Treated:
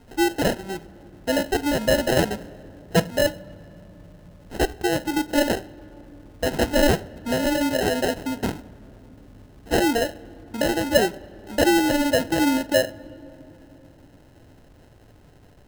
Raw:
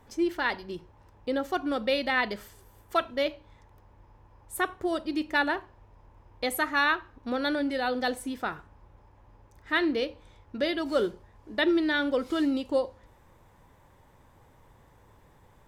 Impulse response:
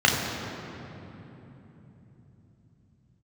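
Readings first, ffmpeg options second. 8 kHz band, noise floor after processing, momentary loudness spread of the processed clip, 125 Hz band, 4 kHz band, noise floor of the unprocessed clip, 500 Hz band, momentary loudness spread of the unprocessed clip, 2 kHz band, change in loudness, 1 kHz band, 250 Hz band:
+14.0 dB, -51 dBFS, 14 LU, +19.5 dB, +6.0 dB, -59 dBFS, +7.5 dB, 10 LU, +2.0 dB, +6.0 dB, +3.5 dB, +6.5 dB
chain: -filter_complex "[0:a]lowpass=12k,acrusher=samples=38:mix=1:aa=0.000001,asplit=2[a][b];[1:a]atrim=start_sample=2205,asetrate=37485,aresample=44100[c];[b][c]afir=irnorm=-1:irlink=0,volume=-39dB[d];[a][d]amix=inputs=2:normalize=0,volume=6dB"

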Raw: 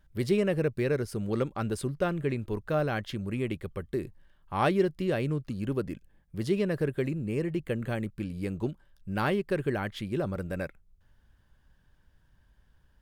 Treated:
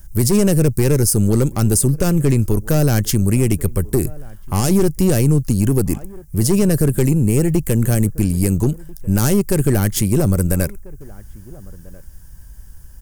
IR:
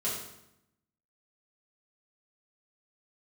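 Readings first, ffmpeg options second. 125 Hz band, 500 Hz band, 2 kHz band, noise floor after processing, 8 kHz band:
+18.0 dB, +9.0 dB, +5.5 dB, -39 dBFS, +29.0 dB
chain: -filter_complex "[0:a]lowshelf=f=73:g=7,aeval=exprs='(tanh(17.8*val(0)+0.45)-tanh(0.45))/17.8':c=same,lowshelf=f=220:g=7.5,aexciter=amount=10.8:drive=4.5:freq=5.4k,asplit=2[a][b];[b]adelay=1341,volume=-24dB,highshelf=f=4k:g=-30.2[c];[a][c]amix=inputs=2:normalize=0,acrossover=split=440|3000[d][e][f];[e]acompressor=threshold=-43dB:ratio=2[g];[d][g][f]amix=inputs=3:normalize=0,alimiter=level_in=18.5dB:limit=-1dB:release=50:level=0:latency=1,volume=-4.5dB"

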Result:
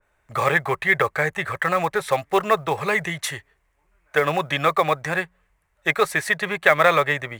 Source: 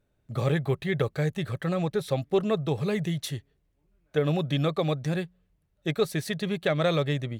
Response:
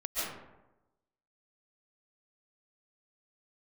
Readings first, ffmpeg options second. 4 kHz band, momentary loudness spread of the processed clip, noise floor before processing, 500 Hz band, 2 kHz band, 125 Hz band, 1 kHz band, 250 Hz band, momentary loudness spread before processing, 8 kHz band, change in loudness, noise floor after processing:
+5.0 dB, 9 LU, -72 dBFS, +5.0 dB, +16.0 dB, -5.0 dB, +15.0 dB, -3.5 dB, 7 LU, +8.5 dB, +6.5 dB, -68 dBFS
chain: -filter_complex "[0:a]equalizer=f=125:t=o:w=1:g=-9,equalizer=f=250:t=o:w=1:g=-9,equalizer=f=1k:t=o:w=1:g=11,equalizer=f=2k:t=o:w=1:g=12,equalizer=f=4k:t=o:w=1:g=-4,equalizer=f=8k:t=o:w=1:g=7,acrossover=split=340|1900[a][b][c];[b]acrusher=bits=5:mode=log:mix=0:aa=0.000001[d];[a][d][c]amix=inputs=3:normalize=0,adynamicequalizer=threshold=0.02:dfrequency=2300:dqfactor=0.7:tfrequency=2300:tqfactor=0.7:attack=5:release=100:ratio=0.375:range=2.5:mode=cutabove:tftype=highshelf,volume=4.5dB"

